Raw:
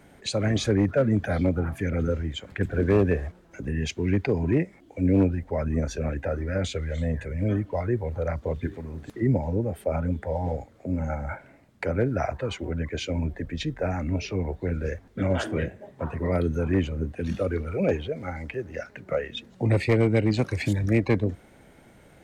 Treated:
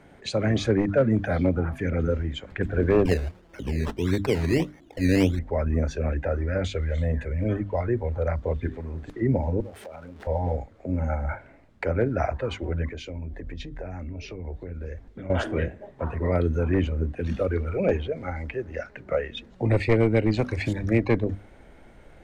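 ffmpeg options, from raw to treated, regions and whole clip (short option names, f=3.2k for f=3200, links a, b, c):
-filter_complex "[0:a]asettb=1/sr,asplit=3[a][b][c];[a]atrim=end=3.054[d];[b]atrim=start=3.05:end=5.39,asetpts=PTS-STARTPTS,afade=t=in:d=0.004:c=qsin,afade=t=out:st=2.336:d=0.004:c=qsin,highpass=47,acrusher=samples=16:mix=1:aa=0.000001:lfo=1:lforange=9.6:lforate=1.6[e];[c]atrim=start=5.386[f];[d][e]acrossfade=d=0.004:c1=hsin:c2=qsin[g];[g][f]acrossfade=d=0.004:c1=qsin:c2=hsin,asettb=1/sr,asplit=3[h][i][j];[h]atrim=end=9.604[k];[i]atrim=start=9.6:end=10.27,asetpts=PTS-STARTPTS,afade=t=in:d=0.004:c=qsin,afade=t=out:st=0.666:d=0.004:c=qsin,aeval=exprs='val(0)+0.5*0.0126*sgn(val(0))':c=same,highpass=f=360:p=1,acompressor=threshold=-39dB:ratio=6:attack=3.2:release=140:knee=1:detection=peak[l];[j]atrim=start=10.266[m];[k][l]acrossfade=d=0.004:c1=hsin:c2=qsin[n];[n][m]acrossfade=d=0.004:c1=qsin:c2=hsin,asettb=1/sr,asplit=3[o][p][q];[o]atrim=end=12.924[r];[p]atrim=start=12.92:end=15.3,asetpts=PTS-STARTPTS,afade=t=in:d=0.004:c=qsin,afade=t=out:st=2.376:d=0.004:c=qsin,equalizer=f=1.2k:t=o:w=2:g=-4.5,acompressor=threshold=-34dB:ratio=5:attack=3.2:release=140:knee=1:detection=peak[s];[q]atrim=start=15.296[t];[r][s]acrossfade=d=0.004:c1=hsin:c2=qsin[u];[u][t]acrossfade=d=0.004:c1=qsin:c2=hsin,aemphasis=mode=reproduction:type=50kf,bandreject=f=50:t=h:w=6,bandreject=f=100:t=h:w=6,bandreject=f=150:t=h:w=6,bandreject=f=200:t=h:w=6,bandreject=f=250:t=h:w=6,bandreject=f=300:t=h:w=6,asubboost=boost=5:cutoff=52,volume=2dB"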